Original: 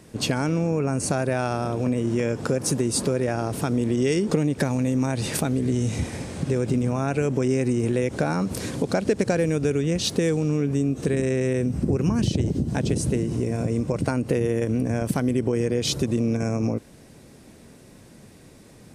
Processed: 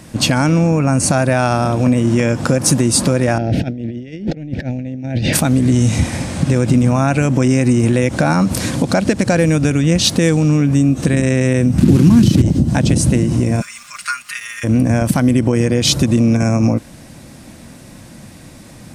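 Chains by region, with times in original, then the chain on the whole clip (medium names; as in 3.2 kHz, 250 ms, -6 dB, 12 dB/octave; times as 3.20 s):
3.38–5.33 s: compressor with a negative ratio -29 dBFS, ratio -0.5 + Butterworth band-stop 1.1 kHz, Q 1.1 + distance through air 250 m
11.78–12.42 s: one-bit delta coder 64 kbps, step -30.5 dBFS + high-pass 91 Hz + resonant low shelf 450 Hz +7.5 dB, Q 1.5
13.60–14.63 s: elliptic high-pass 1.2 kHz + comb 4.9 ms, depth 81% + crackle 550 per s -45 dBFS
whole clip: peaking EQ 420 Hz -14.5 dB 0.29 oct; loudness maximiser +12.5 dB; trim -1 dB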